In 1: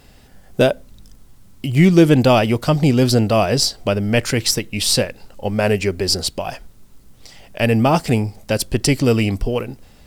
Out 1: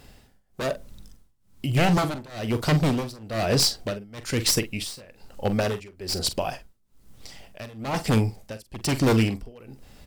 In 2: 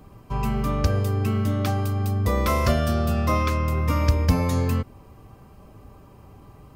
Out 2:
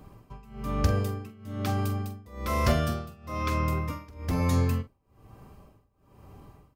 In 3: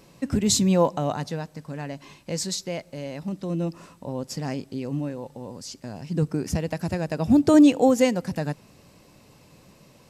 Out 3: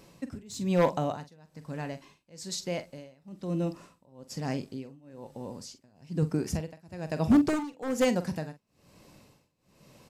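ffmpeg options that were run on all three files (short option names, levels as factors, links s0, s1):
-filter_complex "[0:a]aeval=exprs='0.251*(abs(mod(val(0)/0.251+3,4)-2)-1)':c=same,tremolo=f=1.1:d=0.95,asplit=2[s0][s1];[s1]adelay=45,volume=0.251[s2];[s0][s2]amix=inputs=2:normalize=0,volume=0.794"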